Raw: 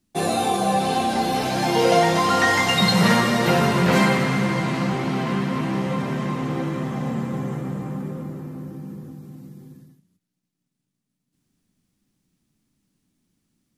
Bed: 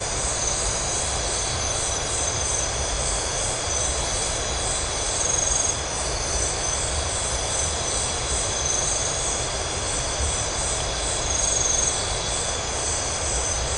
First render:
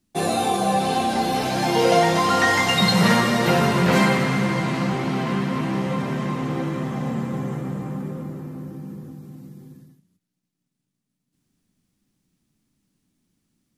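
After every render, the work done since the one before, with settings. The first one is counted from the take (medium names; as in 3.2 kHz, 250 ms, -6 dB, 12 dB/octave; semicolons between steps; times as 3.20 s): no audible change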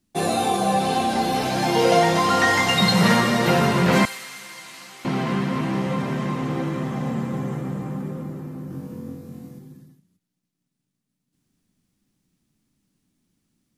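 4.05–5.05 s: differentiator; 8.68–9.59 s: flutter echo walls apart 3.8 m, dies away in 0.49 s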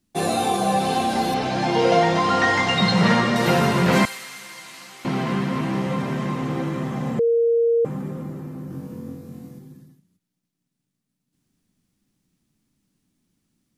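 1.34–3.36 s: distance through air 86 m; 7.19–7.85 s: bleep 465 Hz -15 dBFS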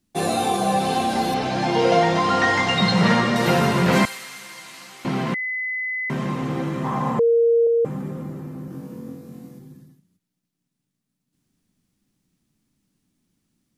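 5.34–6.10 s: bleep 2.02 kHz -23.5 dBFS; 6.84–7.67 s: peaking EQ 990 Hz +14.5 dB 0.75 oct; 8.68–9.60 s: high-pass 140 Hz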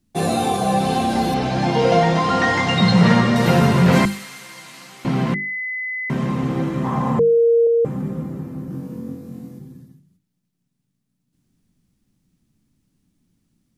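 bass shelf 250 Hz +10 dB; hum notches 50/100/150/200/250/300/350/400 Hz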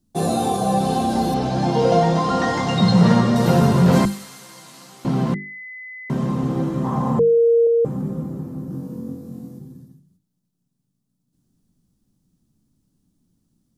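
peaking EQ 2.2 kHz -10.5 dB 1.1 oct; hum notches 50/100 Hz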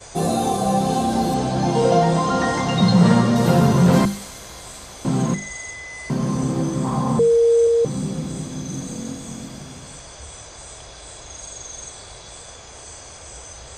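add bed -14 dB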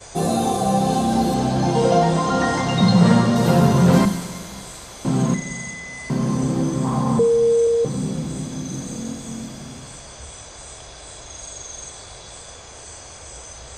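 Schroeder reverb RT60 2 s, combs from 31 ms, DRR 11 dB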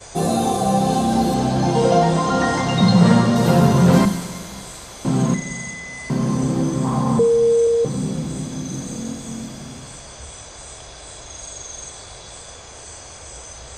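trim +1 dB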